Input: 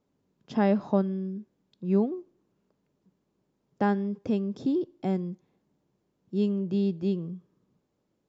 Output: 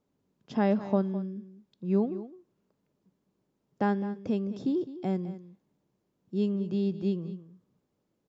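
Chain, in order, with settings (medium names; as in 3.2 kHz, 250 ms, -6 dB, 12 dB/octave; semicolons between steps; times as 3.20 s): delay 209 ms -14.5 dB; trim -2 dB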